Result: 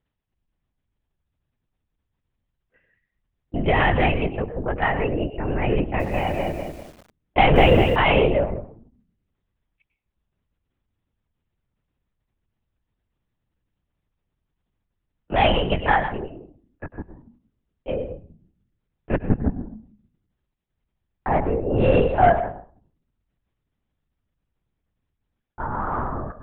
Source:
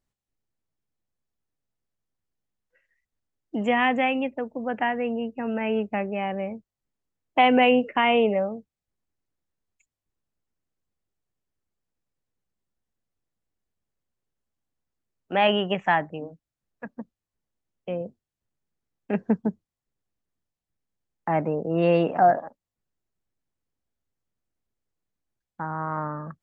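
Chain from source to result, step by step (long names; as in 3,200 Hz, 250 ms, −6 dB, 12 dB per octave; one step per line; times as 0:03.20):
soft clipping −9.5 dBFS, distortion −23 dB
convolution reverb RT60 0.45 s, pre-delay 100 ms, DRR 10 dB
linear-prediction vocoder at 8 kHz whisper
0:05.80–0:07.96: feedback echo at a low word length 198 ms, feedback 35%, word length 8 bits, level −5.5 dB
level +3.5 dB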